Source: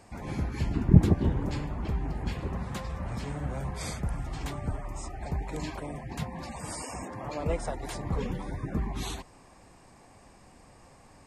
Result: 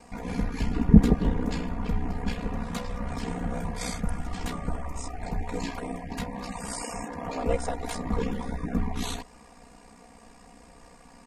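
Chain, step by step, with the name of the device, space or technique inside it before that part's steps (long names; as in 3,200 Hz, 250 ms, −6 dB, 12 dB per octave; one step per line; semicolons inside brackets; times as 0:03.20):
ring-modulated robot voice (ring modulation 31 Hz; comb filter 4.2 ms, depth 84%)
level +4 dB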